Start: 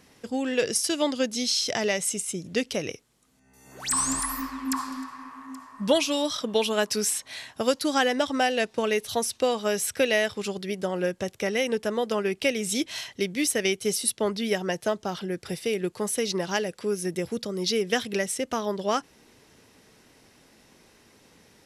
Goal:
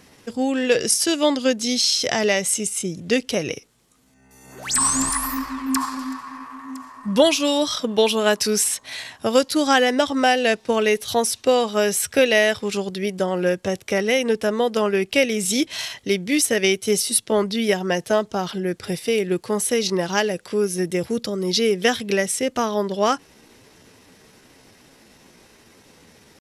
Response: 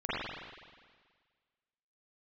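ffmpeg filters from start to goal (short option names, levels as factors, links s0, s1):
-af "atempo=0.82,volume=2"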